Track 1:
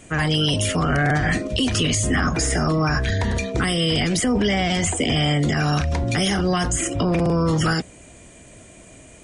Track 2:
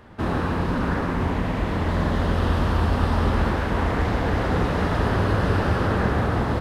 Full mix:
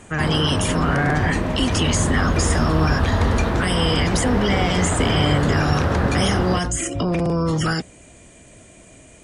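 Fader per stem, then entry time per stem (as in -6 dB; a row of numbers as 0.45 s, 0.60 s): -1.0 dB, +0.5 dB; 0.00 s, 0.00 s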